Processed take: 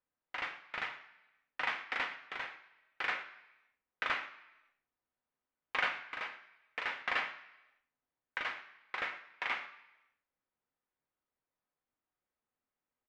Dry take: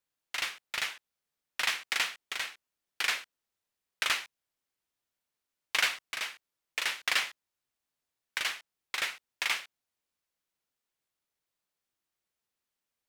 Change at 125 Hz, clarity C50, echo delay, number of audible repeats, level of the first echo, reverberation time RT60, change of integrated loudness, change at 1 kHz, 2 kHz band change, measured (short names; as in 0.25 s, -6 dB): n/a, 11.5 dB, 0.113 s, 1, -20.0 dB, 0.95 s, -6.0 dB, 0.0 dB, -4.0 dB